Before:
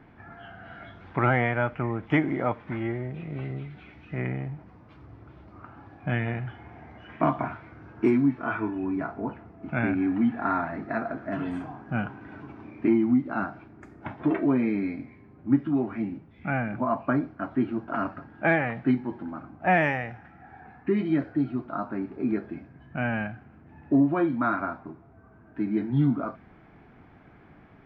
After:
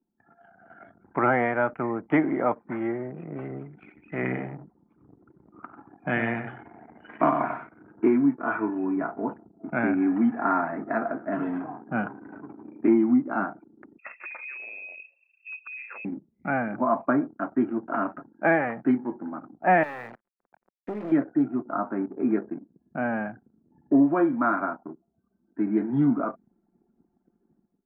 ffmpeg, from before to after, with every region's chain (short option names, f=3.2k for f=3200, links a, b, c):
-filter_complex "[0:a]asettb=1/sr,asplit=3[a][b][c];[a]atrim=end=3.734[d];[b]atrim=start=3.73:end=7.96,asetpts=PTS-STARTPTS,afade=t=in:d=0.004:c=qsin,afade=t=out:st=4.226:d=0.004:c=qsin,highshelf=f=2.4k:g=11.5,aecho=1:1:95:0.447,atrim=end_sample=186543[e];[c]atrim=start=7.956[f];[d][e]acrossfade=d=0.004:c1=hsin:c2=qsin[g];[g][f]acrossfade=d=0.004:c1=qsin:c2=hsin,asettb=1/sr,asplit=3[h][i][j];[h]atrim=end=13.984[k];[i]atrim=start=13.98:end=16.05,asetpts=PTS-STARTPTS,afade=t=in:d=0.004:c=qsin,afade=t=out:st=2.066:d=0.004:c=qsin,acompressor=threshold=-34dB:ratio=4:attack=3.2:release=140:knee=1:detection=peak,lowpass=f=2.4k:t=q:w=0.5098,lowpass=f=2.4k:t=q:w=0.6013,lowpass=f=2.4k:t=q:w=0.9,lowpass=f=2.4k:t=q:w=2.563,afreqshift=-2800[l];[j]atrim=start=16.046[m];[k][l]acrossfade=d=0.004:c1=hsin:c2=qsin[n];[n][m]acrossfade=d=0.004:c1=qsin:c2=hsin,asettb=1/sr,asplit=3[o][p][q];[o]atrim=end=19.834[r];[p]atrim=start=19.83:end=21.12,asetpts=PTS-STARTPTS,afade=t=in:d=0.004:c=qsin,afade=t=out:st=1.286:d=0.004:c=qsin,acompressor=threshold=-26dB:ratio=6:attack=3.2:release=140:knee=1:detection=peak,acrusher=bits=4:dc=4:mix=0:aa=0.000001[s];[q]atrim=start=21.116[t];[r][s]acrossfade=d=0.004:c1=hsin:c2=qsin[u];[u][t]acrossfade=d=0.004:c1=qsin:c2=hsin,asettb=1/sr,asplit=3[v][w][x];[v]atrim=end=22.544[y];[w]atrim=start=22.54:end=23.27,asetpts=PTS-STARTPTS,afade=t=in:d=0.004:c=qsin,afade=t=out:st=0.726:d=0.004:c=qsin,lowpass=f=1.4k:p=1,equalizer=f=81:w=1.3:g=-4.5[z];[x]atrim=start=23.266[aa];[y][z]acrossfade=d=0.004:c1=hsin:c2=qsin[ab];[ab][aa]acrossfade=d=0.004:c1=qsin:c2=hsin,anlmdn=0.251,acrossover=split=180 2100:gain=0.0708 1 0.0794[ac][ad][ae];[ac][ad][ae]amix=inputs=3:normalize=0,dynaudnorm=f=530:g=3:m=11.5dB,volume=-7dB"